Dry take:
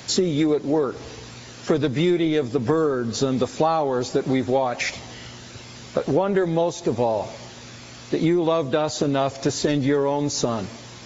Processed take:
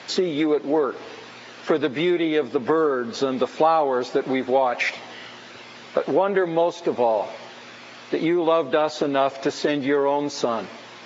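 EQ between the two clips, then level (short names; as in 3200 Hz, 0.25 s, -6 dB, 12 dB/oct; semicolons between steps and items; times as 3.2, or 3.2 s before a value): BPF 220–3100 Hz; low shelf 360 Hz -9 dB; +4.5 dB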